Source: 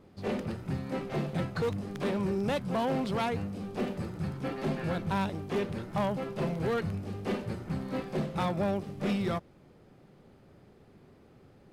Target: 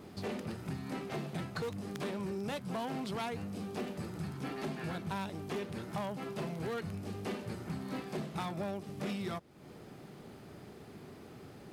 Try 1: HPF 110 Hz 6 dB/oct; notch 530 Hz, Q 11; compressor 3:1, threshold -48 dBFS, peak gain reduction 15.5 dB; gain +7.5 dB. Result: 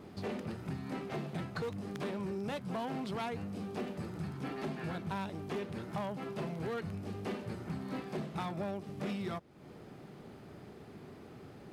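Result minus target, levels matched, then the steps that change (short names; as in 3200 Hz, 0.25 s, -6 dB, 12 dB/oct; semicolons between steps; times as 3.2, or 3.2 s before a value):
8000 Hz band -5.0 dB
add after HPF: high shelf 4500 Hz +7 dB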